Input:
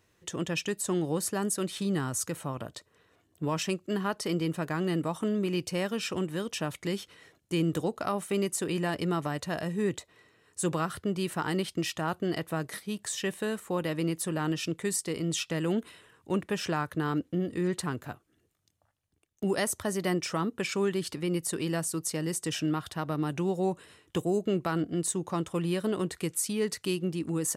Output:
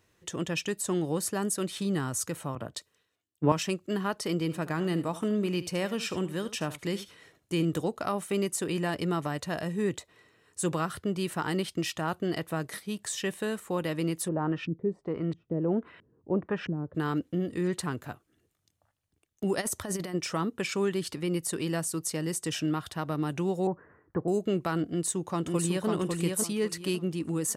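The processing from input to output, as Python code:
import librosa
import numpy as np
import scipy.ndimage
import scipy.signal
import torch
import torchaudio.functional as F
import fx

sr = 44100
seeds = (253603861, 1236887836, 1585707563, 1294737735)

y = fx.band_widen(x, sr, depth_pct=100, at=(2.55, 3.52))
y = fx.echo_single(y, sr, ms=76, db=-15.0, at=(4.41, 7.65))
y = fx.filter_lfo_lowpass(y, sr, shape='saw_up', hz=1.5, low_hz=200.0, high_hz=2300.0, q=1.4, at=(14.27, 16.94), fade=0.02)
y = fx.over_compress(y, sr, threshold_db=-32.0, ratio=-0.5, at=(19.6, 20.13), fade=0.02)
y = fx.steep_lowpass(y, sr, hz=1800.0, slope=48, at=(23.67, 24.28))
y = fx.echo_throw(y, sr, start_s=24.86, length_s=1.02, ms=550, feedback_pct=25, wet_db=-3.0)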